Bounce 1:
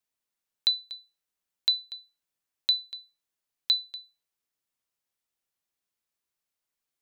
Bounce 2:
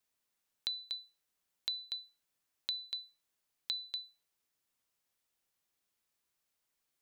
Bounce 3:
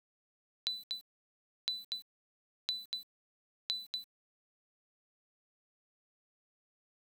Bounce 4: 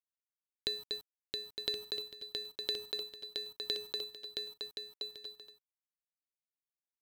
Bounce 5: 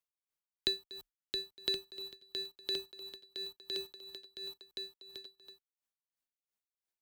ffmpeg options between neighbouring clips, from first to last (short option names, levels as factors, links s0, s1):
-af "alimiter=limit=0.0668:level=0:latency=1:release=149,acompressor=threshold=0.0126:ratio=6,volume=1.41"
-af "aeval=exprs='val(0)*gte(abs(val(0)),0.00299)':c=same"
-filter_complex "[0:a]asplit=2[s0][s1];[s1]acrusher=samples=20:mix=1:aa=0.000001,volume=0.398[s2];[s0][s2]amix=inputs=2:normalize=0,aecho=1:1:670|1072|1313|1458|1545:0.631|0.398|0.251|0.158|0.1,volume=1.12"
-af "afreqshift=-32,aeval=exprs='val(0)*pow(10,-20*(0.5-0.5*cos(2*PI*2.9*n/s))/20)':c=same,volume=1.58"